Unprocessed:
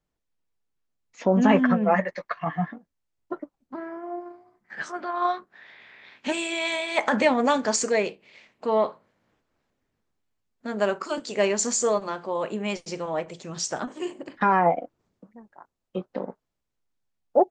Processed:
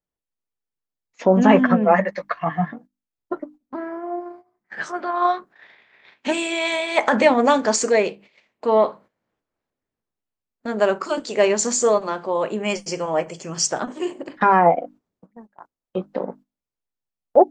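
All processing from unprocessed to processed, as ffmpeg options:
ffmpeg -i in.wav -filter_complex "[0:a]asettb=1/sr,asplit=3[link_01][link_02][link_03];[link_01]atrim=end=12.634[link_04];[link_02]atrim=start=12.63:end=13.67,asetpts=PTS-STARTPTS,afade=type=in:duration=0.004:curve=qsin,afade=type=out:start_time=1.036:duration=0.004:curve=qsin,asuperstop=centerf=3800:order=4:qfactor=4,highshelf=frequency=3800:gain=7.5,asplit=2[link_05][link_06];[link_06]adelay=13,volume=-14dB[link_07];[link_05][link_07]amix=inputs=2:normalize=0,atrim=end_sample=45864[link_08];[link_03]atrim=start=13.666[link_09];[link_04][link_08]acrossfade=duration=0.004:curve1=hsin:curve2=qsin[link_10];[link_10][link_09]acrossfade=duration=0.004:curve1=qsin:curve2=hsin,bandreject=frequency=50:width_type=h:width=6,bandreject=frequency=100:width_type=h:width=6,bandreject=frequency=150:width_type=h:width=6,bandreject=frequency=200:width_type=h:width=6,bandreject=frequency=250:width_type=h:width=6,bandreject=frequency=300:width_type=h:width=6,agate=range=-13dB:threshold=-48dB:ratio=16:detection=peak,equalizer=frequency=530:width_type=o:width=2.9:gain=3,volume=3dB" out.wav

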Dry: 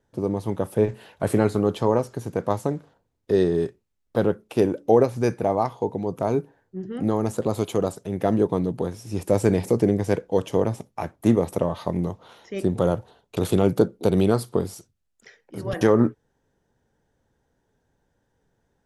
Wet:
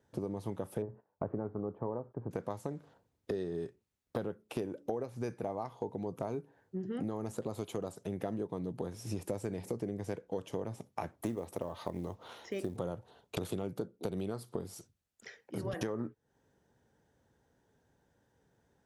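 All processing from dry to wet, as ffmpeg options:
ffmpeg -i in.wav -filter_complex "[0:a]asettb=1/sr,asplit=3[link_01][link_02][link_03];[link_01]atrim=end=0.824[link_04];[link_02]atrim=start=0.82:end=2.31,asetpts=PTS-STARTPTS,afade=type=in:duration=0.004:curve=qsin,afade=type=out:start_time=1.486:duration=0.004:curve=qsin,lowpass=frequency=1200:width=0.5412,lowpass=frequency=1200:width=1.3066,agate=range=-23dB:threshold=-48dB:ratio=16:release=100:detection=peak[link_05];[link_03]atrim=start=2.306[link_06];[link_04][link_05]acrossfade=duration=0.004:curve1=hsin:curve2=qsin[link_07];[link_07][link_06]acrossfade=duration=0.004:curve1=qsin:curve2=hsin,asettb=1/sr,asplit=3[link_08][link_09][link_10];[link_08]atrim=end=11.174[link_11];[link_09]atrim=start=11.17:end=12.77,asetpts=PTS-STARTPTS,afade=type=in:duration=0.004:curve=qsin,afade=type=out:start_time=1.596:duration=0.004:curve=qsin,equalizer=frequency=160:width_type=o:width=0.59:gain=-6.5,acrusher=bits=8:mode=log:mix=0:aa=0.000001[link_12];[link_10]atrim=start=12.766[link_13];[link_11][link_12]acrossfade=duration=0.004:curve1=hsin:curve2=qsin[link_14];[link_14][link_13]acrossfade=duration=0.004:curve1=qsin:curve2=hsin,highpass=61,acompressor=threshold=-33dB:ratio=8,volume=-1dB" out.wav

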